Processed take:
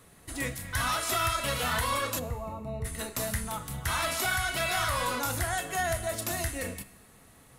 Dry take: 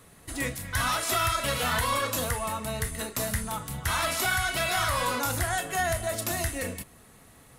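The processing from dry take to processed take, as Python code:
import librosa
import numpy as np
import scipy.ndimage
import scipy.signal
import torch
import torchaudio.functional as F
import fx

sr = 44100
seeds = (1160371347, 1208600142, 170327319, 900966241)

y = fx.moving_average(x, sr, points=27, at=(2.18, 2.84), fade=0.02)
y = fx.comb_fb(y, sr, f0_hz=66.0, decay_s=1.2, harmonics='all', damping=0.0, mix_pct=50)
y = F.gain(torch.from_numpy(y), 3.0).numpy()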